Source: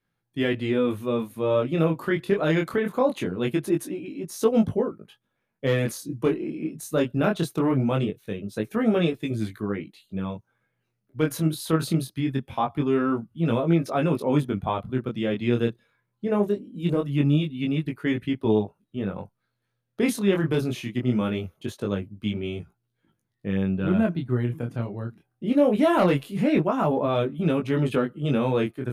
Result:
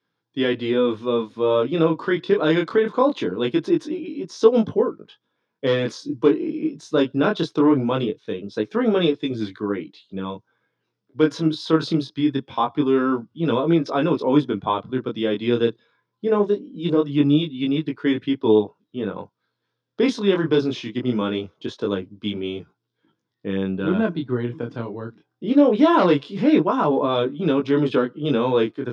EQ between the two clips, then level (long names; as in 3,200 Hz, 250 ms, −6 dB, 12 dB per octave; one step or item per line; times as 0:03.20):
loudspeaker in its box 120–6,100 Hz, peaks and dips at 300 Hz +8 dB, 450 Hz +8 dB, 1,000 Hz +9 dB, 1,500 Hz +5 dB, 3,500 Hz +9 dB, 5,200 Hz +9 dB
−1.0 dB